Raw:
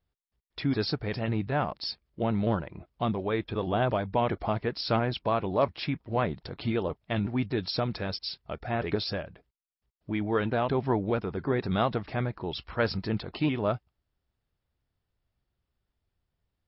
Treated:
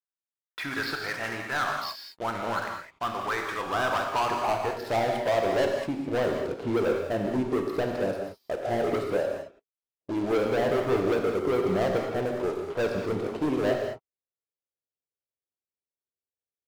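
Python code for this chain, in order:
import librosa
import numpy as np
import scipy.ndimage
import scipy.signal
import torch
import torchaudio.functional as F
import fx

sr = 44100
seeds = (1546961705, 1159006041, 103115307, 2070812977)

y = fx.filter_sweep_bandpass(x, sr, from_hz=1500.0, to_hz=480.0, start_s=3.56, end_s=5.76, q=2.4)
y = fx.leveller(y, sr, passes=5)
y = fx.rev_gated(y, sr, seeds[0], gate_ms=240, shape='flat', drr_db=1.5)
y = y * librosa.db_to_amplitude(-5.0)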